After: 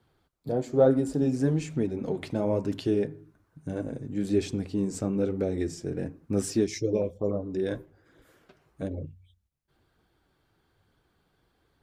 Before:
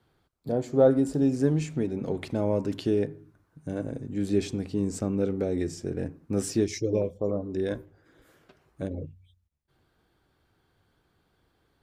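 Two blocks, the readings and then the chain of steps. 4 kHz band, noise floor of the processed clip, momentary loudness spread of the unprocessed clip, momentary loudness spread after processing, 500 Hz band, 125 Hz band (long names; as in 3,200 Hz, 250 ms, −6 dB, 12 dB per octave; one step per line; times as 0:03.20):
−0.5 dB, −72 dBFS, 12 LU, 11 LU, −0.5 dB, −0.5 dB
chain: flanger 1.1 Hz, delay 0.1 ms, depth 7.2 ms, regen −50%
level +3.5 dB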